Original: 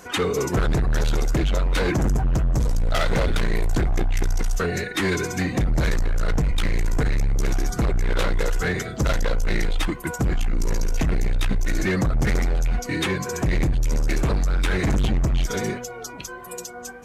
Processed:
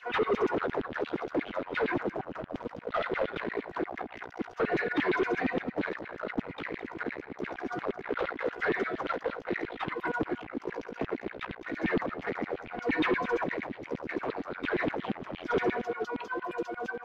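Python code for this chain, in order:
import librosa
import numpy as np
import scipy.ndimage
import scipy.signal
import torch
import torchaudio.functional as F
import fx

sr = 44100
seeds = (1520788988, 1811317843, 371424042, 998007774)

p1 = fx.high_shelf(x, sr, hz=2300.0, db=-7.0)
p2 = fx.over_compress(p1, sr, threshold_db=-24.0, ratio=-0.5)
p3 = p1 + F.gain(torch.from_numpy(p2), -2.5).numpy()
p4 = fx.filter_lfo_highpass(p3, sr, shape='saw_down', hz=8.6, low_hz=220.0, high_hz=3300.0, q=3.5)
p5 = fx.quant_float(p4, sr, bits=2)
p6 = 10.0 ** (-15.0 / 20.0) * np.tanh(p5 / 10.0 ** (-15.0 / 20.0))
p7 = fx.air_absorb(p6, sr, metres=340.0)
p8 = p7 + 10.0 ** (-15.5 / 20.0) * np.pad(p7, (int(218 * sr / 1000.0), 0))[:len(p7)]
y = F.gain(torch.from_numpy(p8), -6.0).numpy()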